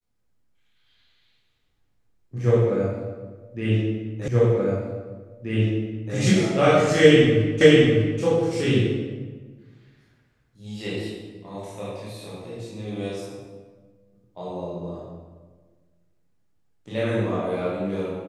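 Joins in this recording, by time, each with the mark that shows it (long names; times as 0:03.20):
0:04.28: the same again, the last 1.88 s
0:07.61: the same again, the last 0.6 s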